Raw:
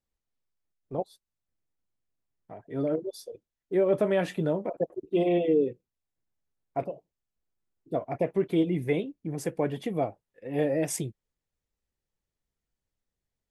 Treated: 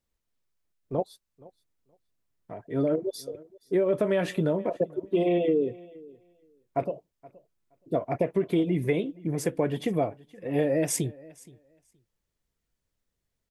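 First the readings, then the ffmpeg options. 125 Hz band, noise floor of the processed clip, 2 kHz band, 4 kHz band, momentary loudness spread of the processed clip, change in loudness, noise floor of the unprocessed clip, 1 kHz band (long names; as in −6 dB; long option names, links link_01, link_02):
+2.5 dB, −83 dBFS, +1.5 dB, +2.5 dB, 15 LU, +1.0 dB, below −85 dBFS, +1.0 dB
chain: -af "bandreject=frequency=790:width=12,acompressor=threshold=-25dB:ratio=6,aecho=1:1:472|944:0.075|0.012,volume=4.5dB"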